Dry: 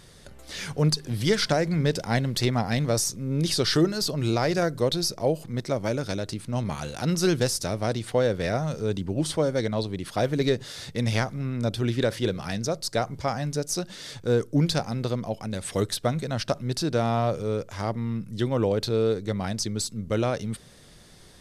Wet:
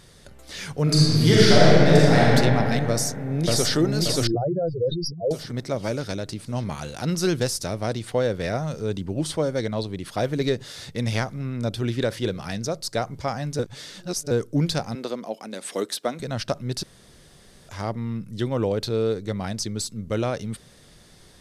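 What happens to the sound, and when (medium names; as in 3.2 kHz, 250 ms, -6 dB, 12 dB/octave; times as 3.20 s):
0.83–2.21 s: reverb throw, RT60 2.9 s, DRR -8.5 dB
2.89–3.77 s: echo throw 580 ms, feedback 45%, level -0.5 dB
4.27–5.31 s: spectral contrast enhancement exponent 3.5
13.59–14.31 s: reverse
14.95–16.20 s: high-pass 230 Hz 24 dB/octave
16.83–17.69 s: room tone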